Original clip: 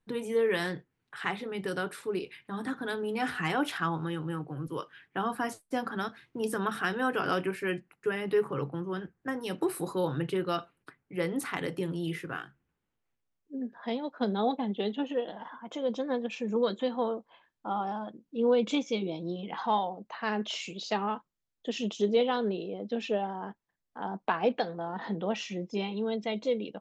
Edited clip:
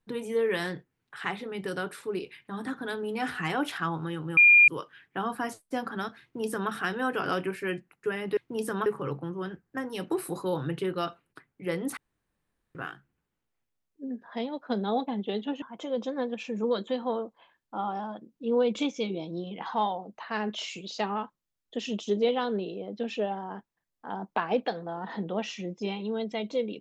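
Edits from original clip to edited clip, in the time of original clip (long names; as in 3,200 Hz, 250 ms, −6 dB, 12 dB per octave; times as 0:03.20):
0:04.37–0:04.68: beep over 2,410 Hz −13 dBFS
0:06.22–0:06.71: duplicate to 0:08.37
0:11.48–0:12.26: fill with room tone
0:15.13–0:15.54: remove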